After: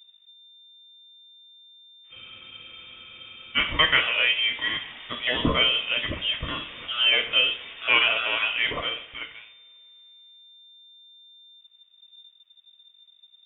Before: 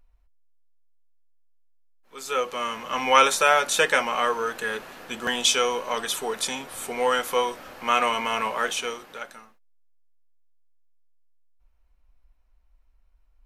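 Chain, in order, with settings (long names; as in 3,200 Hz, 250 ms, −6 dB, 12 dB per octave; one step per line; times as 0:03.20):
coupled-rooms reverb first 0.55 s, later 2.7 s, from −25 dB, DRR 6 dB
voice inversion scrambler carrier 3,600 Hz
frozen spectrum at 0:02.14, 1.43 s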